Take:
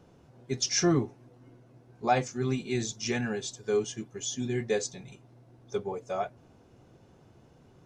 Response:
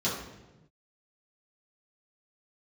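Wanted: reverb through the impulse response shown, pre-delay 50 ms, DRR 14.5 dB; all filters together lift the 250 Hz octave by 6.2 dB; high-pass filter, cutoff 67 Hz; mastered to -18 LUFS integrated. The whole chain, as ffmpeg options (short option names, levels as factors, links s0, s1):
-filter_complex "[0:a]highpass=67,equalizer=f=250:t=o:g=8,asplit=2[s0][s1];[1:a]atrim=start_sample=2205,adelay=50[s2];[s1][s2]afir=irnorm=-1:irlink=0,volume=0.0631[s3];[s0][s3]amix=inputs=2:normalize=0,volume=2.99"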